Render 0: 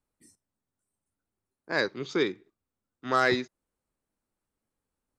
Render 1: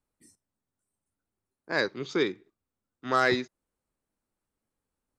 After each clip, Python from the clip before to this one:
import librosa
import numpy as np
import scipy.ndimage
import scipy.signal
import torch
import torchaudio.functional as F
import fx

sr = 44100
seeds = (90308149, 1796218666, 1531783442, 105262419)

y = x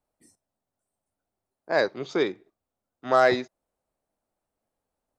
y = fx.peak_eq(x, sr, hz=670.0, db=12.5, octaves=0.83)
y = F.gain(torch.from_numpy(y), -1.0).numpy()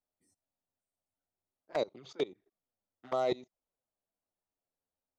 y = fx.level_steps(x, sr, step_db=22)
y = fx.env_flanger(y, sr, rest_ms=11.2, full_db=-26.0)
y = F.gain(torch.from_numpy(y), -5.0).numpy()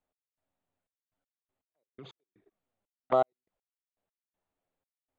y = fx.step_gate(x, sr, bpm=121, pattern='x..xxxx..x..x...', floor_db=-60.0, edge_ms=4.5)
y = np.convolve(y, np.full(8, 1.0 / 8))[:len(y)]
y = F.gain(torch.from_numpy(y), 8.0).numpy()